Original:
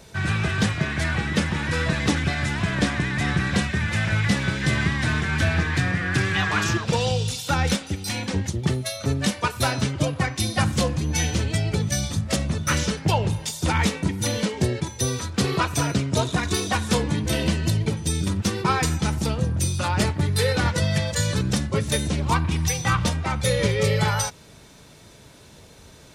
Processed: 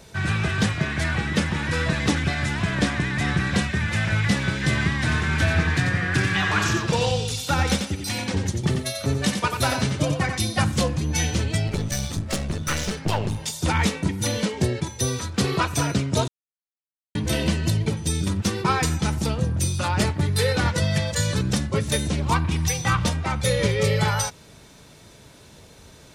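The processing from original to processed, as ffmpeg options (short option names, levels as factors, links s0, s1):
-filter_complex "[0:a]asettb=1/sr,asplit=3[s0][s1][s2];[s0]atrim=end=5.004[s3];[s1]atrim=start=5:end=10.4,asetpts=PTS-STARTPTS,afade=t=in:d=0.004:c=qsin,afade=t=out:st=5.396:d=0.004:c=qsin,aecho=1:1:90:0.473,atrim=end_sample=238140[s4];[s2]atrim=start=10.396[s5];[s3][s4]acrossfade=d=0.004:c1=hsin:c2=qsin[s6];[s6][s5]acrossfade=d=0.004:c1=qsin:c2=hsin,asettb=1/sr,asplit=3[s7][s8][s9];[s7]atrim=end=11.674[s10];[s8]atrim=start=11.67:end=13.41,asetpts=PTS-STARTPTS,afade=t=in:d=0.004:c=qsin,afade=t=out:st=1.736:d=0.004:c=qsin,aeval=exprs='clip(val(0),-1,0.0335)':c=same[s11];[s9]atrim=start=13.406[s12];[s10][s11]acrossfade=d=0.004:c1=hsin:c2=qsin[s13];[s13][s12]acrossfade=d=0.004:c1=qsin:c2=hsin,asplit=3[s14][s15][s16];[s14]atrim=end=16.28,asetpts=PTS-STARTPTS,afade=t=out:st=16.276:d=0.004:c=hsin[s17];[s15]atrim=start=16.28:end=17.15,asetpts=PTS-STARTPTS,volume=0[s18];[s16]atrim=start=17.15,asetpts=PTS-STARTPTS,afade=t=in:d=0.004:c=hsin[s19];[s17][s18][s19]concat=n=3:v=0:a=1"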